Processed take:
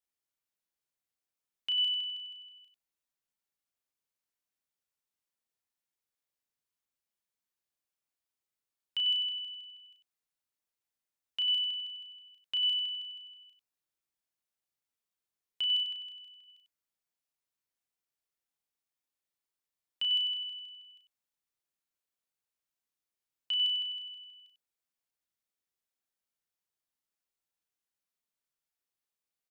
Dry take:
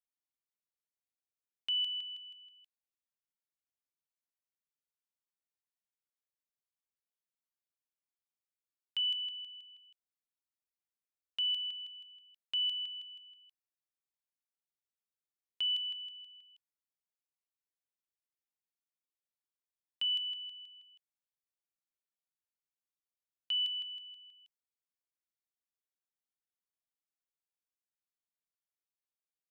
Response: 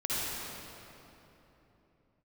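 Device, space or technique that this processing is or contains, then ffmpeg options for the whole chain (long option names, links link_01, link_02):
slapback doubling: -filter_complex "[0:a]asettb=1/sr,asplit=3[link_01][link_02][link_03];[link_01]atrim=end=15.834[link_04];[link_02]atrim=start=15.83:end=16.48,asetpts=PTS-STARTPTS,afade=type=in:duration=0.004:curve=qsin,afade=type=out:start_time=0.646:duration=0.004:curve=qsin,bandreject=frequency=2900:width=12[link_05];[link_03]atrim=start=16.476[link_06];[link_04][link_05]acrossfade=duration=0.004:curve1=hsin:curve2=qsin[link_07];[link_07][link_06]acrossfade=duration=0.004:curve1=qsin:curve2=hsin,asplit=3[link_08][link_09][link_10];[link_09]adelay=34,volume=-5dB[link_11];[link_10]adelay=96,volume=-7.5dB[link_12];[link_08][link_11][link_12]amix=inputs=3:normalize=0,volume=1.5dB"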